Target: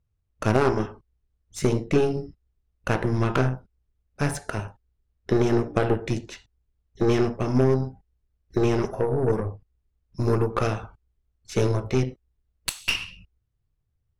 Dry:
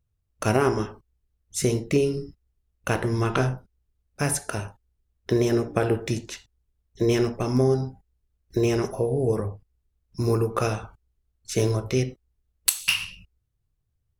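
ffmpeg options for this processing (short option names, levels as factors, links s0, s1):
-af "aemphasis=mode=reproduction:type=50fm,aeval=exprs='0.422*(cos(1*acos(clip(val(0)/0.422,-1,1)))-cos(1*PI/2))+0.0335*(cos(8*acos(clip(val(0)/0.422,-1,1)))-cos(8*PI/2))':c=same"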